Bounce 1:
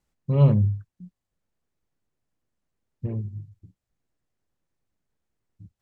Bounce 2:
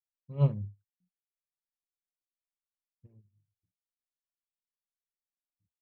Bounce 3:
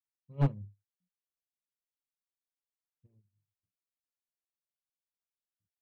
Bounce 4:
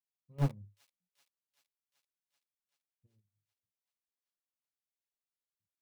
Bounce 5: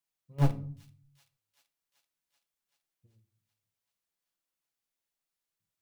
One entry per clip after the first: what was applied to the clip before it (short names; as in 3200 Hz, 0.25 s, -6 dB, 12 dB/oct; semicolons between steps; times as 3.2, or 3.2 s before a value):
upward expander 2.5:1, over -32 dBFS; gain -6.5 dB
one-sided fold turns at -20.5 dBFS; upward expander 1.5:1, over -37 dBFS
in parallel at -6.5 dB: requantised 6-bit, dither none; on the sum: thin delay 0.384 s, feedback 69%, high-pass 3500 Hz, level -14 dB; gain -6.5 dB
shoebox room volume 490 m³, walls furnished, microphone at 0.71 m; gain +5 dB